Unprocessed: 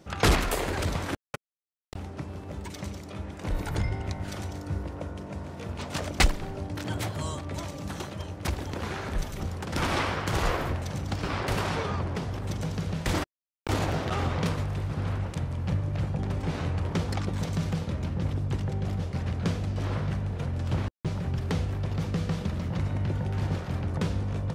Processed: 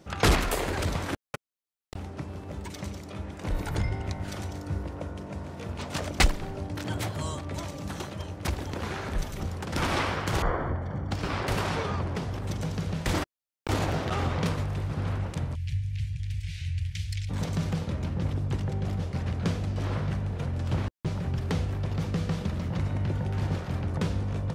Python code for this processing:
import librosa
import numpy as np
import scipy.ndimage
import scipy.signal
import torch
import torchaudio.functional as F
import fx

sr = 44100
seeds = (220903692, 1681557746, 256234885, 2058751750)

y = fx.savgol(x, sr, points=41, at=(10.42, 11.11))
y = fx.cheby2_bandstop(y, sr, low_hz=210.0, high_hz=1200.0, order=4, stop_db=40, at=(15.54, 17.29), fade=0.02)